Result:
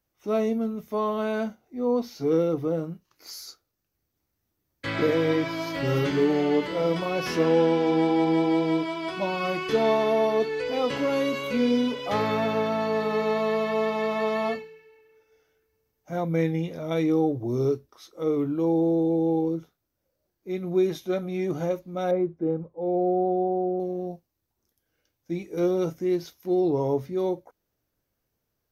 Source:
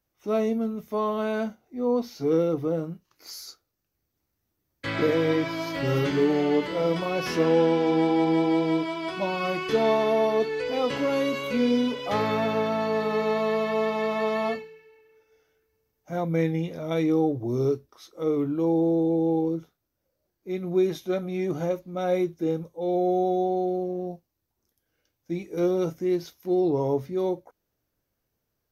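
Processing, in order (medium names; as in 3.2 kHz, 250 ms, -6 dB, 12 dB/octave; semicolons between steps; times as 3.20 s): 22.11–23.80 s: low-pass 1.2 kHz 12 dB/octave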